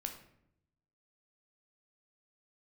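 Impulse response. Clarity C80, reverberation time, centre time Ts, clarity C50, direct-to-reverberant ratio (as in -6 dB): 11.5 dB, 0.75 s, 17 ms, 8.5 dB, 3.5 dB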